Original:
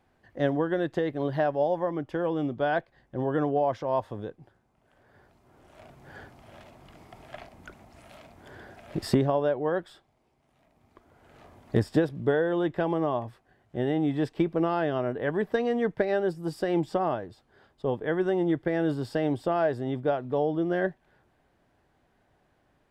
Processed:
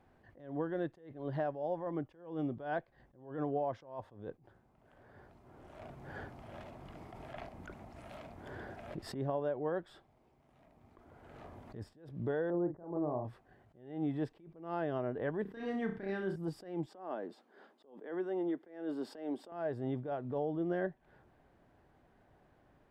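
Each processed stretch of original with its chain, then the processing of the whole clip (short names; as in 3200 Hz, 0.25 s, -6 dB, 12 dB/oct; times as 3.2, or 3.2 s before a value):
12.5–13.25 Bessel low-pass 810 Hz, order 4 + doubler 40 ms -7 dB
15.42–16.36 bell 570 Hz -11.5 dB 1 oct + flutter echo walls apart 5.3 m, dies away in 0.35 s
16.86–19.52 steep high-pass 210 Hz + compressor 1.5:1, threshold -36 dBFS
whole clip: compressor 3:1, threshold -36 dBFS; high shelf 2400 Hz -9.5 dB; attack slew limiter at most 110 dB/s; gain +2 dB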